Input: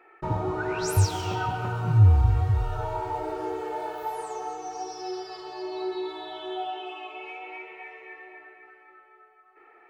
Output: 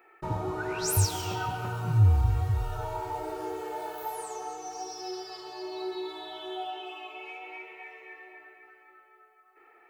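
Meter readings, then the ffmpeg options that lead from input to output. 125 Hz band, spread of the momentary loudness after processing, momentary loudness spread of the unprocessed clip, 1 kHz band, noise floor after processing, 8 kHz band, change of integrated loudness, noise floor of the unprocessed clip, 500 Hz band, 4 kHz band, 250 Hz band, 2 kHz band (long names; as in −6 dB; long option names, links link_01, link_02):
−4.0 dB, 17 LU, 17 LU, −3.5 dB, −59 dBFS, +4.0 dB, −3.5 dB, −56 dBFS, −4.0 dB, +0.5 dB, −4.0 dB, −3.0 dB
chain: -af "aemphasis=mode=production:type=50kf,volume=-4dB"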